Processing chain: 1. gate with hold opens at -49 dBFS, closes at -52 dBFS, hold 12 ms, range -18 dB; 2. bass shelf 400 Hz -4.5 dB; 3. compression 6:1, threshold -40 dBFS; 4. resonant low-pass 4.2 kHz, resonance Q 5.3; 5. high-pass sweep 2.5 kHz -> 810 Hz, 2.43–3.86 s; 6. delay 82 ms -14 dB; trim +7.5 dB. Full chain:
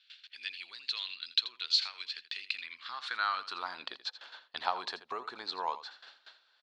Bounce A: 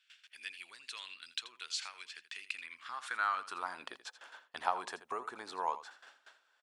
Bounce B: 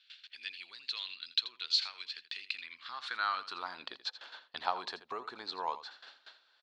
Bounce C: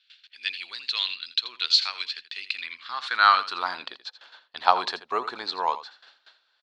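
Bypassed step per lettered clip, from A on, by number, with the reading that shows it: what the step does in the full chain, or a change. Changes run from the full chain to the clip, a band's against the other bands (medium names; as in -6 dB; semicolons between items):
4, 4 kHz band -11.0 dB; 2, 250 Hz band +2.0 dB; 3, mean gain reduction 7.5 dB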